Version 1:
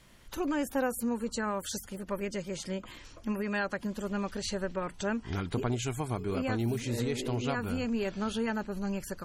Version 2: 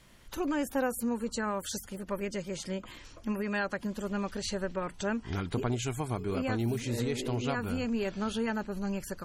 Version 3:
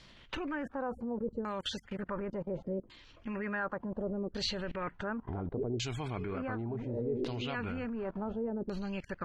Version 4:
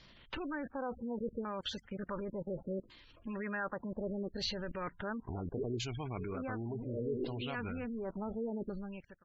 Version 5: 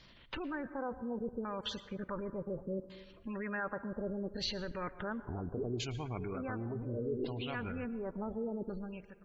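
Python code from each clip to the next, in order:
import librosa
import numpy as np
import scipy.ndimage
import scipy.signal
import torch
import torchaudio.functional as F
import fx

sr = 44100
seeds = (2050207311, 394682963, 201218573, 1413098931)

y1 = x
y2 = fx.level_steps(y1, sr, step_db=21)
y2 = fx.filter_lfo_lowpass(y2, sr, shape='saw_down', hz=0.69, low_hz=370.0, high_hz=4900.0, q=2.3)
y2 = y2 * 10.0 ** (5.0 / 20.0)
y3 = fx.fade_out_tail(y2, sr, length_s=0.56)
y3 = fx.spec_gate(y3, sr, threshold_db=-25, keep='strong')
y3 = y3 * 10.0 ** (-2.5 / 20.0)
y4 = fx.rev_plate(y3, sr, seeds[0], rt60_s=1.3, hf_ratio=0.35, predelay_ms=100, drr_db=14.0)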